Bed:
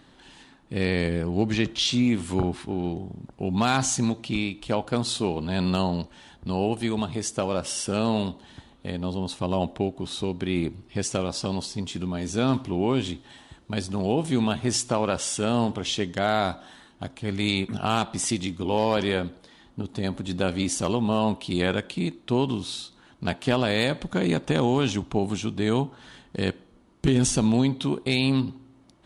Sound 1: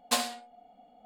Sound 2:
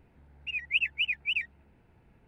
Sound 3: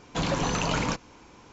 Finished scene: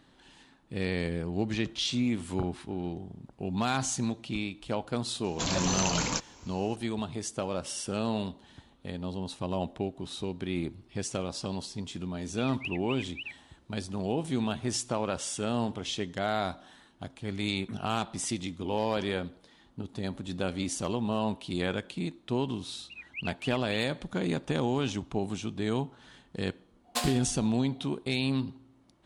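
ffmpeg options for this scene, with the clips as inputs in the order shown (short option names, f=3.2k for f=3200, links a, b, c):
-filter_complex "[2:a]asplit=2[a][b];[0:a]volume=-6.5dB[c];[3:a]bass=f=250:g=-1,treble=f=4k:g=13[d];[1:a]dynaudnorm=f=170:g=3:m=6dB[e];[d]atrim=end=1.52,asetpts=PTS-STARTPTS,volume=-5dB,afade=t=in:d=0.004:c=hsin,afade=t=out:st=1.516:d=0.004:c=hsin,adelay=5240[f];[a]atrim=end=2.27,asetpts=PTS-STARTPTS,volume=-11dB,afade=t=in:d=0.004:c=hsin,afade=t=out:st=2.266:d=0.004:c=hsin,adelay=11900[g];[b]atrim=end=2.27,asetpts=PTS-STARTPTS,volume=-12.5dB,afade=t=in:d=0.004:c=hsin,afade=t=out:st=2.266:d=0.004:c=hsin,adelay=22430[h];[e]atrim=end=1.05,asetpts=PTS-STARTPTS,volume=-5dB,afade=t=in:d=0.004:c=hsin,afade=t=out:st=1.046:d=0.004:c=hsin,adelay=26840[i];[c][f][g][h][i]amix=inputs=5:normalize=0"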